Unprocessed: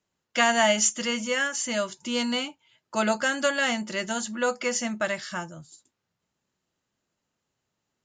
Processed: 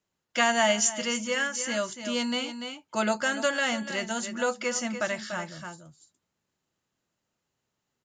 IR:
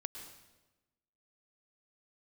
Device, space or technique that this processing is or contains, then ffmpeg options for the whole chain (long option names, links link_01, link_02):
ducked delay: -filter_complex "[0:a]asplit=3[link_01][link_02][link_03];[link_02]adelay=291,volume=-5.5dB[link_04];[link_03]apad=whole_len=367676[link_05];[link_04][link_05]sidechaincompress=threshold=-29dB:ratio=10:attack=32:release=665[link_06];[link_01][link_06]amix=inputs=2:normalize=0,volume=-2dB"